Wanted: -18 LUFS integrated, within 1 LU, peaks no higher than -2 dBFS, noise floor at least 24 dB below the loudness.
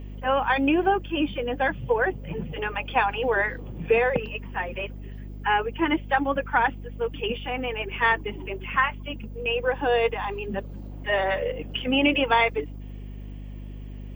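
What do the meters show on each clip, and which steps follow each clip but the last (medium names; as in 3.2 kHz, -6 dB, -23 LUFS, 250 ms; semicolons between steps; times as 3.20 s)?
hum 50 Hz; highest harmonic 250 Hz; hum level -35 dBFS; loudness -25.5 LUFS; peak level -9.0 dBFS; loudness target -18.0 LUFS
-> hum notches 50/100/150/200/250 Hz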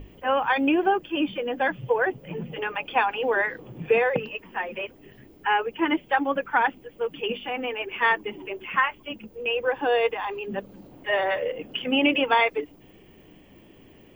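hum not found; loudness -25.5 LUFS; peak level -8.5 dBFS; loudness target -18.0 LUFS
-> trim +7.5 dB; peak limiter -2 dBFS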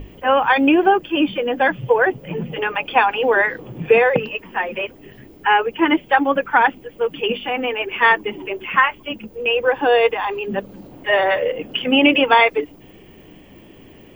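loudness -18.0 LUFS; peak level -2.0 dBFS; noise floor -45 dBFS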